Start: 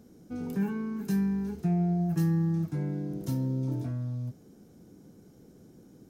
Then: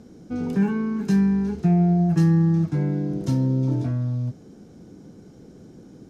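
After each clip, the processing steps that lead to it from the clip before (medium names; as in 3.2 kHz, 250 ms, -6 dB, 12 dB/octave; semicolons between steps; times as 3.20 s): low-pass 6.5 kHz 12 dB/octave; trim +8.5 dB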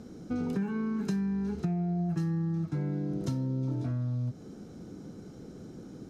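compression 6:1, threshold -29 dBFS, peak gain reduction 13.5 dB; small resonant body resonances 1.3/4 kHz, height 7 dB, ringing for 25 ms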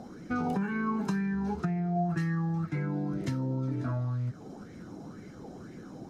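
coarse spectral quantiser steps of 15 dB; sweeping bell 2 Hz 730–2100 Hz +16 dB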